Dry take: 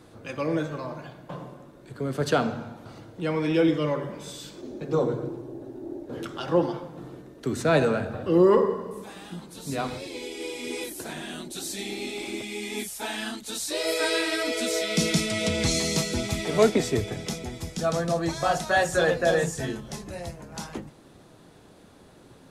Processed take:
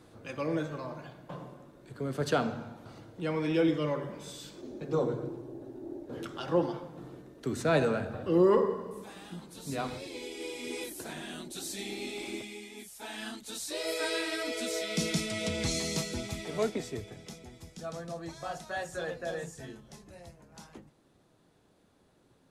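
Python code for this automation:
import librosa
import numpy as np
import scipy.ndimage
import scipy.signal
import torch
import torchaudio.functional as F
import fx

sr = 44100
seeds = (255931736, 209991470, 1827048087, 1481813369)

y = fx.gain(x, sr, db=fx.line((12.36, -5.0), (12.75, -15.0), (13.26, -7.0), (15.98, -7.0), (17.13, -14.0)))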